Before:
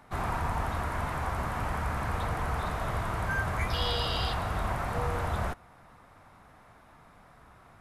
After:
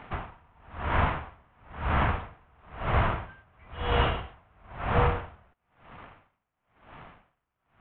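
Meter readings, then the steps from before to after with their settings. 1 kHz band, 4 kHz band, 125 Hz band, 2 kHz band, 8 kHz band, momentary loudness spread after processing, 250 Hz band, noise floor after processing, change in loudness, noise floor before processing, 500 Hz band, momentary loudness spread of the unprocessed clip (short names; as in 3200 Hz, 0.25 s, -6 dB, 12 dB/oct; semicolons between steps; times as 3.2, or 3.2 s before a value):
+1.0 dB, -4.5 dB, +1.0 dB, 0.0 dB, under -30 dB, 21 LU, +1.0 dB, -82 dBFS, +2.5 dB, -57 dBFS, +2.5 dB, 4 LU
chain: CVSD 16 kbps; dB-linear tremolo 1 Hz, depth 39 dB; gain +9 dB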